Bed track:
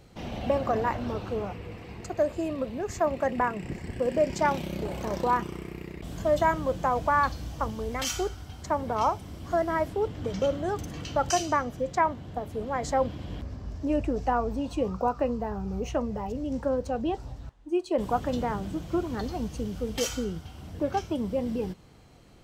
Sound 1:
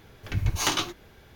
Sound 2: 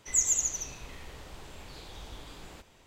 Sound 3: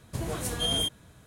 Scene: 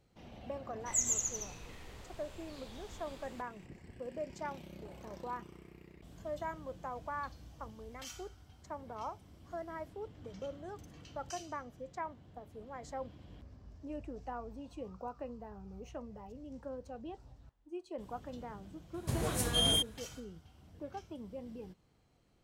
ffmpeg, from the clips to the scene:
ffmpeg -i bed.wav -i cue0.wav -i cue1.wav -i cue2.wav -filter_complex "[0:a]volume=-16.5dB[link_01];[2:a]atrim=end=2.86,asetpts=PTS-STARTPTS,volume=-6dB,afade=type=in:duration=0.004:curve=hsin,afade=type=out:start_time=2.856:duration=0.004:curve=hsin,adelay=800[link_02];[3:a]atrim=end=1.26,asetpts=PTS-STARTPTS,volume=-1.5dB,afade=type=in:duration=0.004:curve=hsin,afade=type=out:start_time=1.256:duration=0.004:curve=hsin,adelay=18940[link_03];[link_01][link_02][link_03]amix=inputs=3:normalize=0" out.wav

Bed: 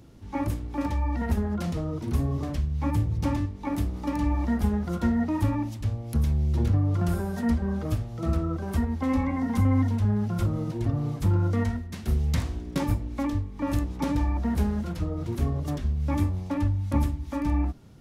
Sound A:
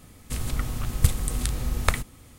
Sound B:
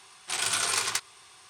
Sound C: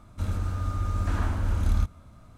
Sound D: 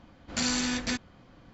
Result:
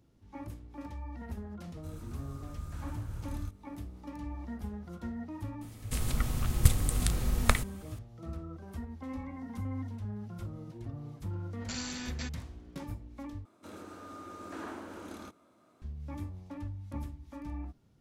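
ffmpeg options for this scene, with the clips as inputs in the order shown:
ffmpeg -i bed.wav -i cue0.wav -i cue1.wav -i cue2.wav -i cue3.wav -filter_complex "[3:a]asplit=2[link_01][link_02];[0:a]volume=-15dB[link_03];[link_01]aemphasis=mode=production:type=50kf[link_04];[link_02]highpass=frequency=340:width_type=q:width=2.4[link_05];[link_03]asplit=2[link_06][link_07];[link_06]atrim=end=13.454[link_08];[link_05]atrim=end=2.37,asetpts=PTS-STARTPTS,volume=-8.5dB[link_09];[link_07]atrim=start=15.816[link_10];[link_04]atrim=end=2.37,asetpts=PTS-STARTPTS,volume=-17dB,afade=type=in:duration=0.004:curve=hsin,afade=type=out:start_time=2.366:duration=0.004:curve=hsin,adelay=1650[link_11];[1:a]atrim=end=2.38,asetpts=PTS-STARTPTS,volume=-2.5dB,afade=type=in:duration=0.004:curve=hsin,afade=type=out:start_time=2.376:duration=0.004:curve=hsin,adelay=247401S[link_12];[4:a]atrim=end=1.53,asetpts=PTS-STARTPTS,volume=-10.5dB,afade=type=in:duration=0.004:curve=hsin,afade=type=out:start_time=1.526:duration=0.004:curve=hsin,adelay=11320[link_13];[link_08][link_09]acrossfade=duration=0.004:curve1=hsin:curve2=hsin[link_14];[link_14][link_10]acrossfade=duration=0.004:curve1=hsin:curve2=hsin[link_15];[link_15][link_11][link_12][link_13]amix=inputs=4:normalize=0" out.wav

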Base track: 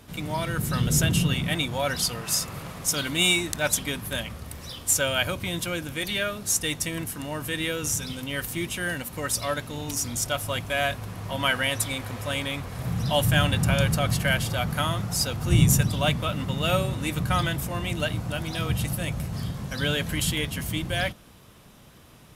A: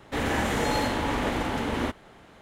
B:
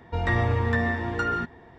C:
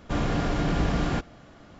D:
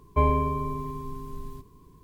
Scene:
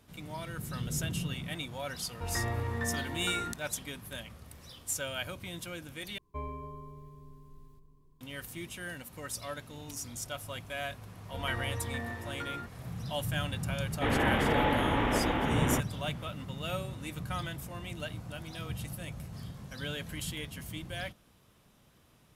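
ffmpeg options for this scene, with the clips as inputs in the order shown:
ffmpeg -i bed.wav -i cue0.wav -i cue1.wav -i cue2.wav -i cue3.wav -filter_complex "[2:a]asplit=2[link_01][link_02];[0:a]volume=-12dB[link_03];[4:a]asplit=2[link_04][link_05];[link_05]adelay=271,lowpass=frequency=860:poles=1,volume=-8.5dB,asplit=2[link_06][link_07];[link_07]adelay=271,lowpass=frequency=860:poles=1,volume=0.51,asplit=2[link_08][link_09];[link_09]adelay=271,lowpass=frequency=860:poles=1,volume=0.51,asplit=2[link_10][link_11];[link_11]adelay=271,lowpass=frequency=860:poles=1,volume=0.51,asplit=2[link_12][link_13];[link_13]adelay=271,lowpass=frequency=860:poles=1,volume=0.51,asplit=2[link_14][link_15];[link_15]adelay=271,lowpass=frequency=860:poles=1,volume=0.51[link_16];[link_04][link_06][link_08][link_10][link_12][link_14][link_16]amix=inputs=7:normalize=0[link_17];[1:a]aresample=8000,aresample=44100[link_18];[link_03]asplit=2[link_19][link_20];[link_19]atrim=end=6.184[link_21];[link_17]atrim=end=2.03,asetpts=PTS-STARTPTS,volume=-17.5dB[link_22];[link_20]atrim=start=8.206[link_23];[link_01]atrim=end=1.78,asetpts=PTS-STARTPTS,volume=-10dB,afade=type=in:duration=0.004:curve=hsin,afade=type=out:start_time=1.776:duration=0.004:curve=hsin,adelay=2080[link_24];[link_02]atrim=end=1.78,asetpts=PTS-STARTPTS,volume=-13.5dB,afade=type=in:duration=0.004:curve=hsin,afade=type=out:start_time=1.776:duration=0.004:curve=hsin,adelay=11210[link_25];[link_18]atrim=end=2.41,asetpts=PTS-STARTPTS,volume=-1.5dB,afade=type=in:duration=0.004:curve=hsin,afade=type=out:start_time=2.406:duration=0.004:curve=hsin,adelay=13890[link_26];[link_21][link_22]acrossfade=duration=0.004:curve1=hsin:curve2=hsin[link_27];[link_27][link_23]acrossfade=duration=0.004:curve1=hsin:curve2=hsin[link_28];[link_28][link_24][link_25][link_26]amix=inputs=4:normalize=0" out.wav

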